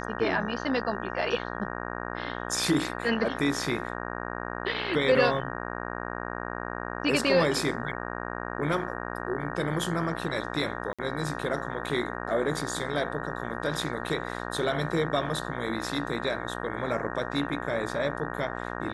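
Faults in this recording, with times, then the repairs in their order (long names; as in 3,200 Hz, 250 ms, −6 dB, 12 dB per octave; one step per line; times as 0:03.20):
mains buzz 60 Hz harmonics 31 −35 dBFS
0:10.93–0:10.99: drop-out 56 ms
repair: hum removal 60 Hz, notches 31
repair the gap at 0:10.93, 56 ms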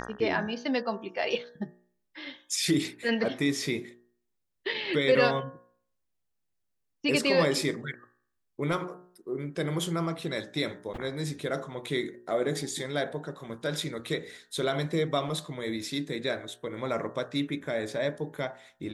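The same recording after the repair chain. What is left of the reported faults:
none of them is left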